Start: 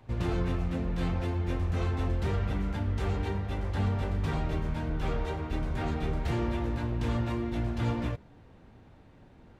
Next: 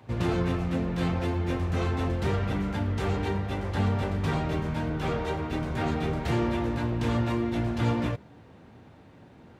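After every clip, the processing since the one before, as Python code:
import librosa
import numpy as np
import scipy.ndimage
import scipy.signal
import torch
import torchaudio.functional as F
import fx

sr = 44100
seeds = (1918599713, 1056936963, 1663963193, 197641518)

y = scipy.signal.sosfilt(scipy.signal.butter(2, 96.0, 'highpass', fs=sr, output='sos'), x)
y = F.gain(torch.from_numpy(y), 5.0).numpy()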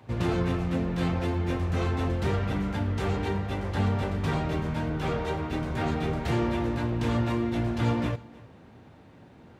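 y = x + 10.0 ** (-22.0 / 20.0) * np.pad(x, (int(309 * sr / 1000.0), 0))[:len(x)]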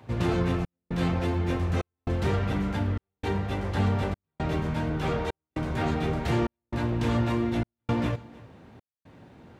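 y = fx.step_gate(x, sr, bpm=116, pattern='xxxxx..xx', floor_db=-60.0, edge_ms=4.5)
y = F.gain(torch.from_numpy(y), 1.0).numpy()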